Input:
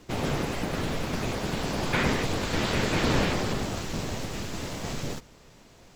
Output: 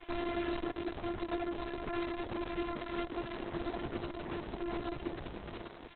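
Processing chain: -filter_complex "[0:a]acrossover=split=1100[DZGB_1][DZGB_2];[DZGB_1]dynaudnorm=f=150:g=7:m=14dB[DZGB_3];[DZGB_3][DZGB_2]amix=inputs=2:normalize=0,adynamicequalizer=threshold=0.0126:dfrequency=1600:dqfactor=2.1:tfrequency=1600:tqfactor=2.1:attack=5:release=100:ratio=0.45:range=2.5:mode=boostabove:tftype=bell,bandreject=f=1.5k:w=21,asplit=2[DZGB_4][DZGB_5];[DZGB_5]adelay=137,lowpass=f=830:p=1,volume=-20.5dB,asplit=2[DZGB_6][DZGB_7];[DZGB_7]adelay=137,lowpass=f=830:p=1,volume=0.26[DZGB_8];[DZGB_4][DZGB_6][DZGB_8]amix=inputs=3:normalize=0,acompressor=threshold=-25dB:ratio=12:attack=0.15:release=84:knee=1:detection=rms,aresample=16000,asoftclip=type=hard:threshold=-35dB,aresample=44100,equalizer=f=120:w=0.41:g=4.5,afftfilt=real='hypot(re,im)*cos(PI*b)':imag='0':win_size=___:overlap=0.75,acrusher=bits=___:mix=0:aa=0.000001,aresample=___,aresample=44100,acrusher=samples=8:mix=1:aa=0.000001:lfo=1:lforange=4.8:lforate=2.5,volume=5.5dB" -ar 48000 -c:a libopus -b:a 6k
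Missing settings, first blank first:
512, 7, 8000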